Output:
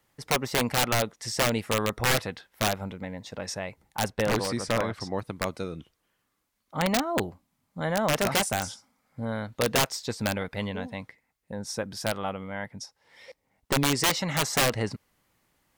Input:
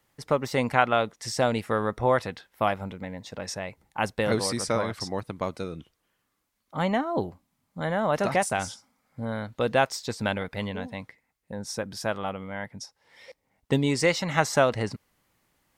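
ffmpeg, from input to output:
ffmpeg -i in.wav -filter_complex "[0:a]aeval=exprs='(mod(6.68*val(0)+1,2)-1)/6.68':channel_layout=same,asettb=1/sr,asplit=3[link_01][link_02][link_03];[link_01]atrim=end=4.084[link_04];[link_02]atrim=start=4.08:end=5.19,asetpts=PTS-STARTPTS,afade=type=in:duration=0.004:curve=qsin,afade=type=out:start_time=1.106:duration=0.004:curve=qsin,aemphasis=mode=reproduction:type=cd[link_05];[link_03]atrim=start=5.186[link_06];[link_04][link_05]acrossfade=duration=0.004:curve1=hsin:curve2=qsin[link_07];[link_07][link_06]acrossfade=duration=0.004:curve1=qsin:curve2=hsin" out.wav

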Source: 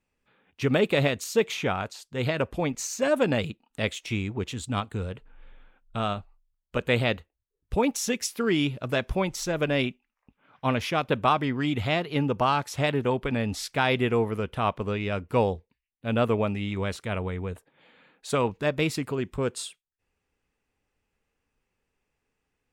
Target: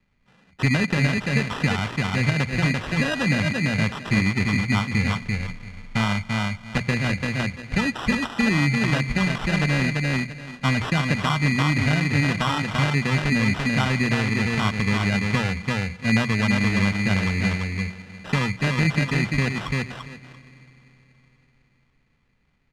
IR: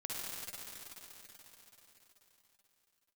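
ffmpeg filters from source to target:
-filter_complex "[0:a]aecho=1:1:340|680|1020:0.501|0.0752|0.0113,acrossover=split=150|1500|5300[link_01][link_02][link_03][link_04];[link_01]acompressor=threshold=-42dB:ratio=4[link_05];[link_02]acompressor=threshold=-30dB:ratio=4[link_06];[link_03]acompressor=threshold=-34dB:ratio=4[link_07];[link_04]acompressor=threshold=-50dB:ratio=4[link_08];[link_05][link_06][link_07][link_08]amix=inputs=4:normalize=0,lowshelf=frequency=280:width_type=q:width=1.5:gain=13,bandreject=frequency=60:width_type=h:width=6,bandreject=frequency=120:width_type=h:width=6,bandreject=frequency=180:width_type=h:width=6,asplit=2[link_09][link_10];[1:a]atrim=start_sample=2205,adelay=88[link_11];[link_10][link_11]afir=irnorm=-1:irlink=0,volume=-22dB[link_12];[link_09][link_12]amix=inputs=2:normalize=0,acrusher=samples=20:mix=1:aa=0.000001,deesser=0.5,lowpass=8000,equalizer=frequency=2200:width_type=o:width=2.3:gain=13"

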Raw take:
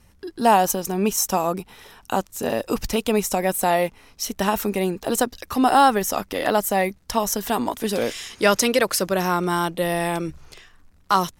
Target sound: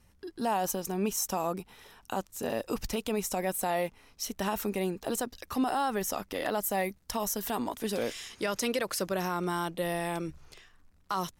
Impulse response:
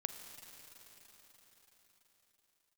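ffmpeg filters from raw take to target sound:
-filter_complex "[0:a]asettb=1/sr,asplit=3[link_01][link_02][link_03];[link_01]atrim=end=6.634[link_04];[link_02]atrim=start=6.63:end=7.51,asetpts=PTS-STARTPTS,afade=type=in:duration=0.004:curve=qsin,afade=type=out:start_time=0.876:duration=0.004:curve=qsin,highshelf=frequency=10000:gain=7[link_05];[link_03]atrim=start=7.506[link_06];[link_04][link_05]acrossfade=duration=0.004:curve1=hsin:curve2=qsin[link_07];[link_07][link_06]acrossfade=duration=0.004:curve1=qsin:curve2=hsin,alimiter=limit=-12.5dB:level=0:latency=1:release=48,volume=-8dB"

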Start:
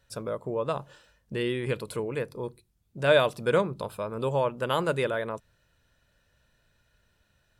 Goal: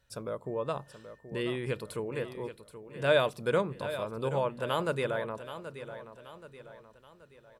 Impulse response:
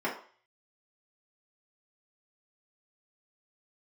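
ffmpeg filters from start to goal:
-filter_complex "[0:a]asettb=1/sr,asplit=3[link_01][link_02][link_03];[link_01]atrim=end=0.464[link_04];[link_02]atrim=start=0.46:end=1.97,asetpts=PTS-STARTPTS,afade=type=in:duration=0.004:curve=qsin,afade=type=out:start_time=1.506:duration=0.004:curve=qsin,aeval=exprs='val(0)+0.000891*sin(2*PI*1800*n/s)':channel_layout=same[link_05];[link_03]atrim=start=1.966[link_06];[link_04][link_05]acrossfade=duration=0.004:curve1=hsin:curve2=qsin[link_07];[link_07][link_06]acrossfade=duration=0.004:curve1=qsin:curve2=hsin,aecho=1:1:778|1556|2334|3112:0.251|0.111|0.0486|0.0214,volume=-4dB"

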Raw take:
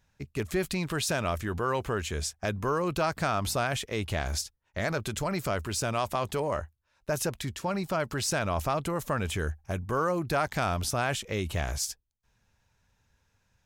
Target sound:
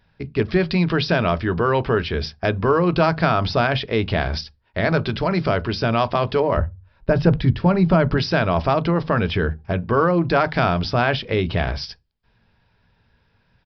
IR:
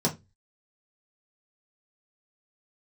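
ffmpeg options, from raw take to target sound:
-filter_complex "[0:a]asettb=1/sr,asplit=3[link_01][link_02][link_03];[link_01]atrim=end=6.574[link_04];[link_02]atrim=start=6.57:end=8.17,asetpts=PTS-STARTPTS,afade=type=in:duration=0.004:curve=qsin,afade=type=out:start_time=1.596:duration=0.004:curve=qsin,aemphasis=mode=reproduction:type=bsi[link_05];[link_03]atrim=start=8.166[link_06];[link_04][link_05]acrossfade=duration=0.004:curve1=hsin:curve2=qsin[link_07];[link_07][link_06]acrossfade=duration=0.004:curve1=qsin:curve2=hsin,asplit=2[link_08][link_09];[1:a]atrim=start_sample=2205,lowpass=4800[link_10];[link_09][link_10]afir=irnorm=-1:irlink=0,volume=-21dB[link_11];[link_08][link_11]amix=inputs=2:normalize=0,aresample=11025,aresample=44100,volume=8.5dB"

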